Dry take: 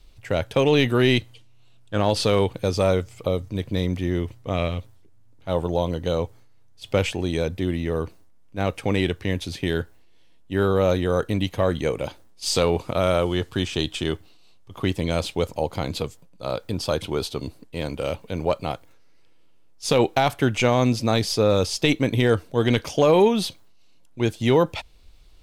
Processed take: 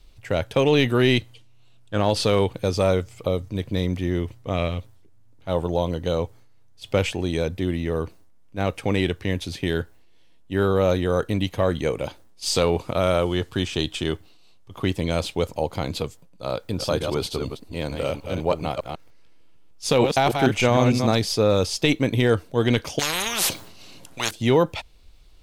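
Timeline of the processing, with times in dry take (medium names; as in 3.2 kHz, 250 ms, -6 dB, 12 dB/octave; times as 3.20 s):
16.54–21.15 s: chunks repeated in reverse 151 ms, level -5 dB
22.99–24.31 s: spectrum-flattening compressor 10:1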